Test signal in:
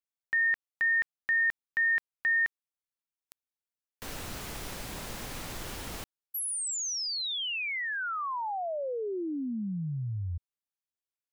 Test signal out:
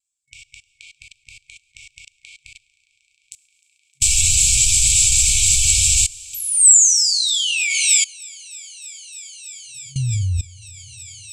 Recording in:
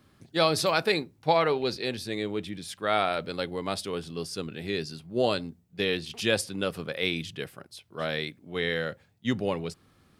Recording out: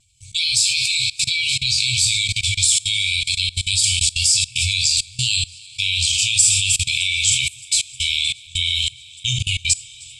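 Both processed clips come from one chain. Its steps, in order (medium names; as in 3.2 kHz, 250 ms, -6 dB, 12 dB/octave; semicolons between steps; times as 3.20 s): coarse spectral quantiser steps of 15 dB; bass shelf 270 Hz -5.5 dB; in parallel at -1 dB: compression 8:1, threshold -40 dBFS; on the sum: gate -48 dBFS, range -9 dB; feedback echo behind a high-pass 309 ms, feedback 80%, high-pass 2 kHz, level -17.5 dB; FFT band-reject 130–2200 Hz; two-slope reverb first 0.41 s, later 2.2 s, from -18 dB, DRR 3.5 dB; vibrato 0.34 Hz 8.2 cents; level held to a coarse grid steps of 22 dB; resonant low-pass 7.7 kHz, resonance Q 9.3; bass shelf 75 Hz +7 dB; loudness maximiser +23 dB; trim -1 dB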